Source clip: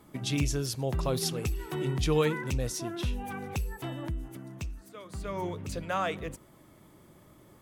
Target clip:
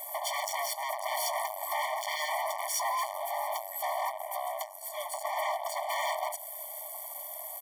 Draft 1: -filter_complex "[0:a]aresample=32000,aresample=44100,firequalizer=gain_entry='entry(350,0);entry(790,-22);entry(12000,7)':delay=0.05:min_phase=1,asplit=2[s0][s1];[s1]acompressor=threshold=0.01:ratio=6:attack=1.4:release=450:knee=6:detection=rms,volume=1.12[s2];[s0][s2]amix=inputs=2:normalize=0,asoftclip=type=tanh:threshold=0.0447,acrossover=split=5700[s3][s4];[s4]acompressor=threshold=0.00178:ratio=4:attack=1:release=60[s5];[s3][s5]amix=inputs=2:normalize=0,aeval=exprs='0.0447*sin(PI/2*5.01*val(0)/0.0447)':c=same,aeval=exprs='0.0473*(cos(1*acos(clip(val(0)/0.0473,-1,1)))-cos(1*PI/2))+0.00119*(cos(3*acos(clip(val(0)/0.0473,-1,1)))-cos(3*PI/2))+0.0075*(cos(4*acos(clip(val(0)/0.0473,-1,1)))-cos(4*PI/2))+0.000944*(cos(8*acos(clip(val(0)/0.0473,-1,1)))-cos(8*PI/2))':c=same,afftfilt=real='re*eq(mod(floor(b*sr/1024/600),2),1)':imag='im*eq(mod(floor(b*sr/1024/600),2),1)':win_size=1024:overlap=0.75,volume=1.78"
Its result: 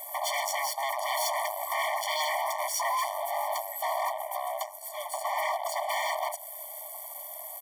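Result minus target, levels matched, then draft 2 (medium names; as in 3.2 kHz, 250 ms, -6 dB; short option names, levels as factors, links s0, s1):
saturation: distortion -6 dB
-filter_complex "[0:a]aresample=32000,aresample=44100,firequalizer=gain_entry='entry(350,0);entry(790,-22);entry(12000,7)':delay=0.05:min_phase=1,asplit=2[s0][s1];[s1]acompressor=threshold=0.01:ratio=6:attack=1.4:release=450:knee=6:detection=rms,volume=1.12[s2];[s0][s2]amix=inputs=2:normalize=0,asoftclip=type=tanh:threshold=0.0188,acrossover=split=5700[s3][s4];[s4]acompressor=threshold=0.00178:ratio=4:attack=1:release=60[s5];[s3][s5]amix=inputs=2:normalize=0,aeval=exprs='0.0447*sin(PI/2*5.01*val(0)/0.0447)':c=same,aeval=exprs='0.0473*(cos(1*acos(clip(val(0)/0.0473,-1,1)))-cos(1*PI/2))+0.00119*(cos(3*acos(clip(val(0)/0.0473,-1,1)))-cos(3*PI/2))+0.0075*(cos(4*acos(clip(val(0)/0.0473,-1,1)))-cos(4*PI/2))+0.000944*(cos(8*acos(clip(val(0)/0.0473,-1,1)))-cos(8*PI/2))':c=same,afftfilt=real='re*eq(mod(floor(b*sr/1024/600),2),1)':imag='im*eq(mod(floor(b*sr/1024/600),2),1)':win_size=1024:overlap=0.75,volume=1.78"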